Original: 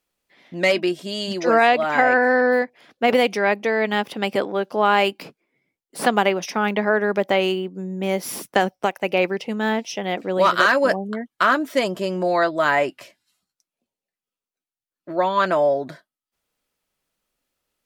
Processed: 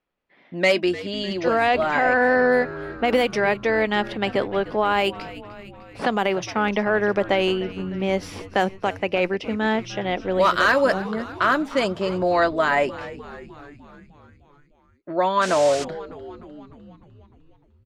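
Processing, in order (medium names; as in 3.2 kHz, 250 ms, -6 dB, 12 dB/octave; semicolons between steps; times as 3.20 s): level-controlled noise filter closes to 2.3 kHz, open at -12.5 dBFS; peak limiter -10 dBFS, peak gain reduction 6 dB; frequency-shifting echo 302 ms, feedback 64%, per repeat -95 Hz, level -16.5 dB; 15.41–15.83 s: band noise 990–7800 Hz -34 dBFS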